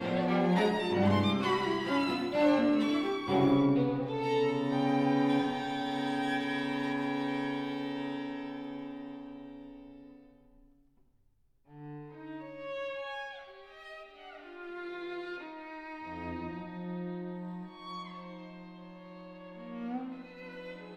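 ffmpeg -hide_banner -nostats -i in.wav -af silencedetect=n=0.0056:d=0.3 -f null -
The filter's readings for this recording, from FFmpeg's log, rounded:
silence_start: 10.10
silence_end: 11.74 | silence_duration: 1.65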